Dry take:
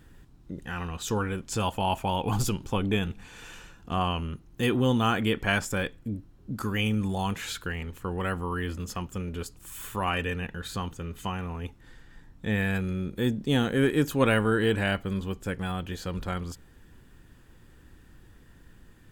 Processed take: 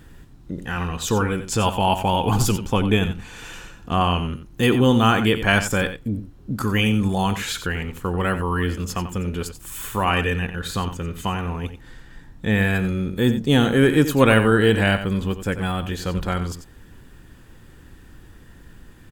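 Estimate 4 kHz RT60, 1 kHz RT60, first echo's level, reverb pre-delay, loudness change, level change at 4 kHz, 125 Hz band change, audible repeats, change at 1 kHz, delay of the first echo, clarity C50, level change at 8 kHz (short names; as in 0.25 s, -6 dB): none, none, -11.0 dB, none, +8.0 dB, +8.0 dB, +8.0 dB, 1, +8.0 dB, 90 ms, none, +8.0 dB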